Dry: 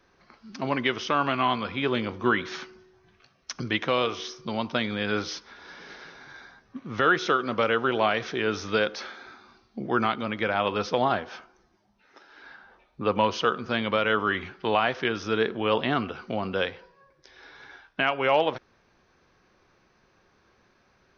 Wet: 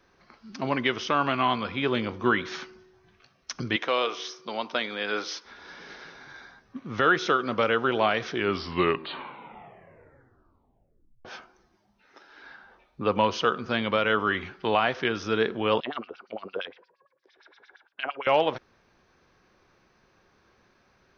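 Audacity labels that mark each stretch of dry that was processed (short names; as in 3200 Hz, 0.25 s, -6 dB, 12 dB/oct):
3.760000	5.450000	HPF 380 Hz
8.260000	8.260000	tape stop 2.99 s
15.800000	18.270000	LFO band-pass sine 8.7 Hz 350–5300 Hz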